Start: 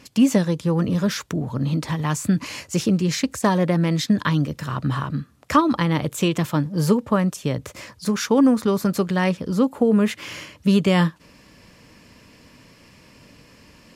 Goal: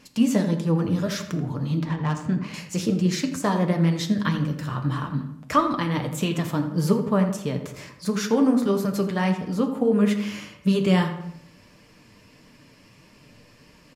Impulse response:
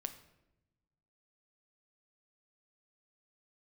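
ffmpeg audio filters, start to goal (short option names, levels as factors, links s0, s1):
-filter_complex "[0:a]flanger=delay=4.1:depth=6.7:regen=41:speed=1.6:shape=triangular,asettb=1/sr,asplit=3[s0][s1][s2];[s0]atrim=end=1.804[s3];[s1]atrim=start=1.8:end=2.54,asetpts=PTS-STARTPTS,afade=t=in:d=0.004:c=qsin,afade=t=out:st=0.736:d=0.004:c=qsin,adynamicsmooth=sensitivity=4:basefreq=2200[s4];[s2]atrim=start=2.536[s5];[s3][s4]acrossfade=d=0.004:c1=hsin:c2=qsin[s6];[s6][s5]acrossfade=d=0.004:c1=qsin:c2=hsin,asplit=2[s7][s8];[s8]adelay=83,lowpass=f=2100:p=1,volume=0.316,asplit=2[s9][s10];[s10]adelay=83,lowpass=f=2100:p=1,volume=0.46,asplit=2[s11][s12];[s12]adelay=83,lowpass=f=2100:p=1,volume=0.46,asplit=2[s13][s14];[s14]adelay=83,lowpass=f=2100:p=1,volume=0.46,asplit=2[s15][s16];[s16]adelay=83,lowpass=f=2100:p=1,volume=0.46[s17];[s7][s9][s11][s13][s15][s17]amix=inputs=6:normalize=0[s18];[1:a]atrim=start_sample=2205,afade=t=out:st=0.38:d=0.01,atrim=end_sample=17199[s19];[s18][s19]afir=irnorm=-1:irlink=0,volume=1.26"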